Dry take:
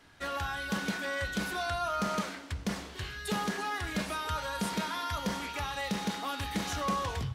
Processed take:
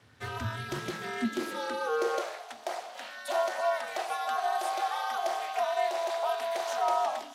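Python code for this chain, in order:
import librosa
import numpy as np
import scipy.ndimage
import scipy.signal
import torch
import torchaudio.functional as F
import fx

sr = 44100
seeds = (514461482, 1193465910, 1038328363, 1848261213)

y = fx.echo_wet_highpass(x, sr, ms=310, feedback_pct=78, hz=2900.0, wet_db=-15.0)
y = y * np.sin(2.0 * np.pi * 160.0 * np.arange(len(y)) / sr)
y = fx.filter_sweep_highpass(y, sr, from_hz=100.0, to_hz=700.0, start_s=0.37, end_s=2.46, q=7.7)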